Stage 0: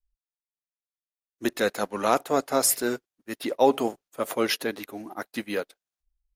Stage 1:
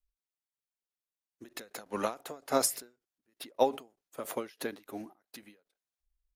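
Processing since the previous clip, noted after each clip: endings held to a fixed fall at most 200 dB/s; trim -3 dB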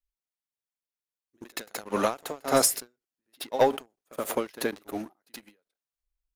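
pre-echo 74 ms -14.5 dB; waveshaping leveller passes 2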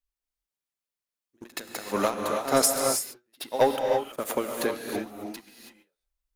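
gated-style reverb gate 350 ms rising, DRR 2.5 dB

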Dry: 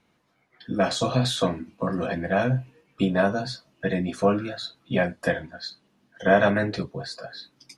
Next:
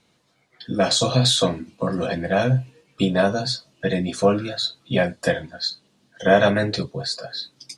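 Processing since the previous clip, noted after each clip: ten-band graphic EQ 125 Hz +5 dB, 500 Hz +4 dB, 4 kHz +8 dB, 8 kHz +10 dB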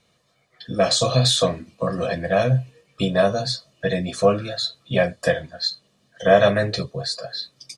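comb 1.7 ms, depth 47%; trim -1 dB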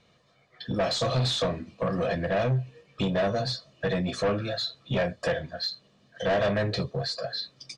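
in parallel at +1.5 dB: compression, threshold -27 dBFS, peak gain reduction 17.5 dB; on the sum: saturation -16 dBFS, distortion -9 dB; distance through air 100 m; trim -4.5 dB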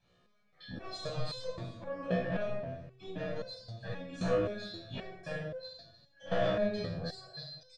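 delay 306 ms -19.5 dB; reverberation RT60 0.75 s, pre-delay 11 ms, DRR -5.5 dB; resonator arpeggio 3.8 Hz 62–510 Hz; trim -8 dB

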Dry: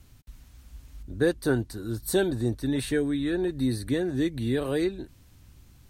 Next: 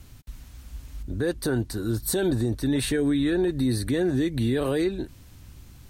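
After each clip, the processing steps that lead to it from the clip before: peak limiter -23 dBFS, peak gain reduction 11 dB; trim +6.5 dB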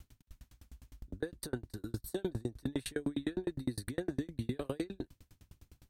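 sawtooth tremolo in dB decaying 9.8 Hz, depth 37 dB; trim -4.5 dB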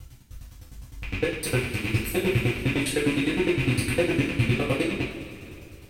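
rattle on loud lows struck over -43 dBFS, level -28 dBFS; two-slope reverb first 0.41 s, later 2.8 s, from -15 dB, DRR -7.5 dB; trim +5 dB

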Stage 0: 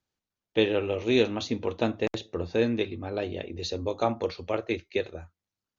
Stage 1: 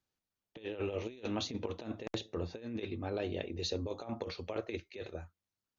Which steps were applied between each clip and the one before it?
compressor with a negative ratio -30 dBFS, ratio -0.5; trim -7 dB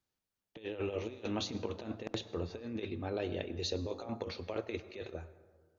plate-style reverb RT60 1.6 s, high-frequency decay 0.4×, pre-delay 85 ms, DRR 14.5 dB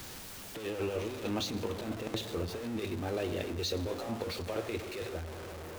jump at every zero crossing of -38 dBFS

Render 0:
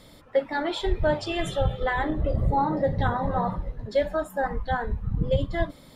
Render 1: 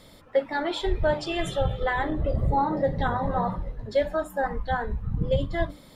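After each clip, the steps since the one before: hum notches 50/100/150/200/250/300 Hz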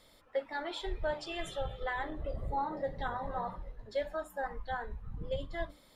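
peaking EQ 140 Hz -9.5 dB 2.6 oct; trim -8.5 dB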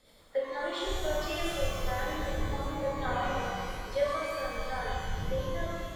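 rotary cabinet horn 8 Hz, later 1.1 Hz, at 0.41 s; pitch-shifted reverb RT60 2.1 s, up +12 st, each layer -8 dB, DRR -5.5 dB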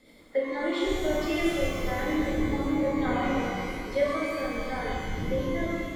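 small resonant body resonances 280/2100 Hz, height 15 dB, ringing for 25 ms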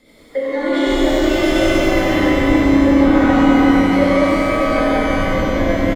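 delay 98 ms -3.5 dB; reverberation RT60 5.6 s, pre-delay 40 ms, DRR -5 dB; trim +5.5 dB

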